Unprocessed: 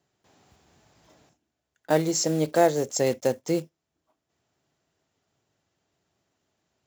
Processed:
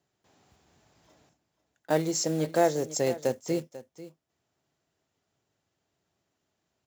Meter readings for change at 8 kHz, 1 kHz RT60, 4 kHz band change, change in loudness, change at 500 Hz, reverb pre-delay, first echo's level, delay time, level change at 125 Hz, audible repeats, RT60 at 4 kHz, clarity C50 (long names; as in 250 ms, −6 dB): −3.5 dB, no reverb audible, −3.5 dB, −3.5 dB, −3.5 dB, no reverb audible, −16.0 dB, 493 ms, −3.5 dB, 1, no reverb audible, no reverb audible